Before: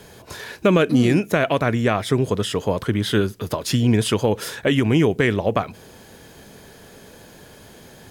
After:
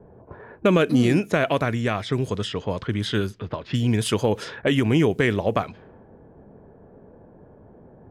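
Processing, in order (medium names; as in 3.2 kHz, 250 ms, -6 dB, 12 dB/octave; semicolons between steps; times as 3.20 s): level-controlled noise filter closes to 730 Hz, open at -16 dBFS; 1.65–4.13 s: peaking EQ 500 Hz -4 dB 3 oct; level-controlled noise filter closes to 1.2 kHz, open at -17.5 dBFS; trim -2 dB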